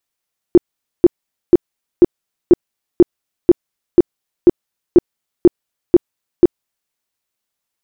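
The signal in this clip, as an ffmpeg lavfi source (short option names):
-f lavfi -i "aevalsrc='0.841*sin(2*PI*350*mod(t,0.49))*lt(mod(t,0.49),9/350)':d=6.37:s=44100"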